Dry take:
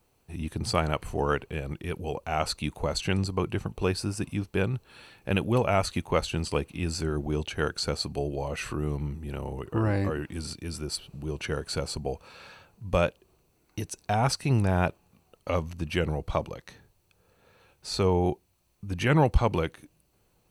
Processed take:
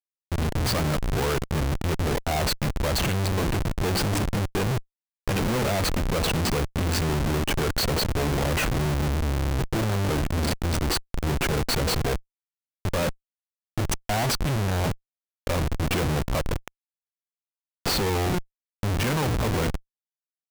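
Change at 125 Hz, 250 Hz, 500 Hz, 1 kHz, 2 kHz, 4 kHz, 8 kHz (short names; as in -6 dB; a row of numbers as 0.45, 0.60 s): +4.0, +2.5, +1.0, +2.0, +4.5, +6.0, +7.0 dB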